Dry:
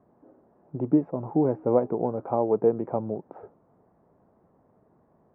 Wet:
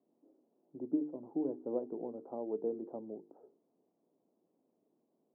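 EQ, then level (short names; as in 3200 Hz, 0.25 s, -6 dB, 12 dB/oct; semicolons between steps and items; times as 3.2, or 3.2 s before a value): ladder band-pass 350 Hz, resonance 40%; notches 50/100/150/200/250/300/350/400/450 Hz; -2.5 dB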